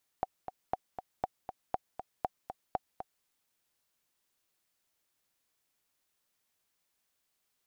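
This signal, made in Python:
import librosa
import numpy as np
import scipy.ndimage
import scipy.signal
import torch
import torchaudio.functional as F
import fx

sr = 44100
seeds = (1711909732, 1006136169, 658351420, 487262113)

y = fx.click_track(sr, bpm=238, beats=2, bars=6, hz=753.0, accent_db=9.0, level_db=-17.0)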